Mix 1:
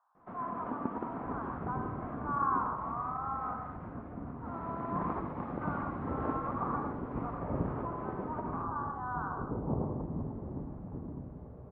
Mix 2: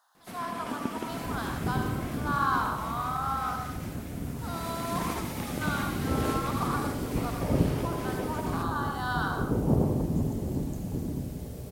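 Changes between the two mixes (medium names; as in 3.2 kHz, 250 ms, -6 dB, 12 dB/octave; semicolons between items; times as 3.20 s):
speech: remove distance through air 170 m; first sound -6.0 dB; master: remove four-pole ladder low-pass 1.3 kHz, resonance 50%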